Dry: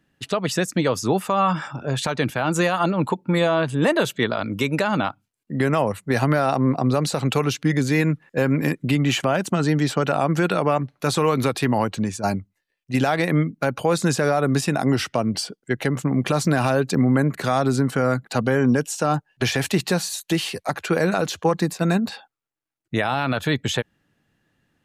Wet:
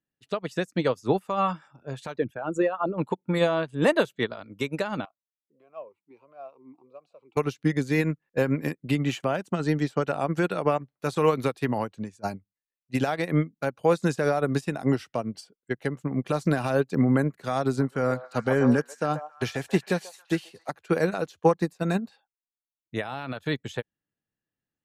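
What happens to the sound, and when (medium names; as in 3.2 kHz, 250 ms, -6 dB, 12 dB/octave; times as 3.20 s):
2.16–2.98 s: resonances exaggerated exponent 2
5.05–7.37 s: talking filter a-u 1.5 Hz
17.63–20.67 s: repeats whose band climbs or falls 136 ms, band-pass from 780 Hz, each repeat 0.7 oct, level -2 dB
whole clip: peaking EQ 460 Hz +2.5 dB 0.77 oct; upward expansion 2.5:1, over -30 dBFS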